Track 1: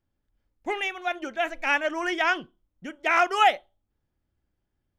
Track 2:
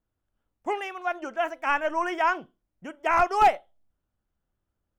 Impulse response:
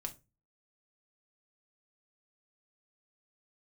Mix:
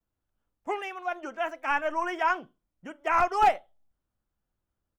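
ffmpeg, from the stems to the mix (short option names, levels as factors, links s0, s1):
-filter_complex "[0:a]bandpass=f=1100:t=q:w=3.3:csg=0,volume=0.596[s0];[1:a]volume=-1,adelay=8.8,volume=0.668,asplit=2[s1][s2];[s2]volume=0.119[s3];[2:a]atrim=start_sample=2205[s4];[s3][s4]afir=irnorm=-1:irlink=0[s5];[s0][s1][s5]amix=inputs=3:normalize=0"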